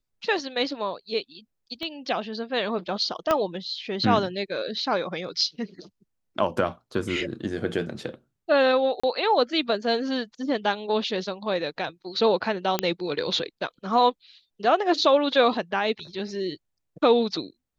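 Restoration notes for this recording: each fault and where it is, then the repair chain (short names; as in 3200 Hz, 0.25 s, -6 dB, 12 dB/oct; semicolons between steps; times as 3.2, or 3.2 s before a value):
1.83 pop -21 dBFS
3.31 pop -9 dBFS
9–9.04 gap 35 ms
12.79 pop -7 dBFS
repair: de-click; interpolate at 9, 35 ms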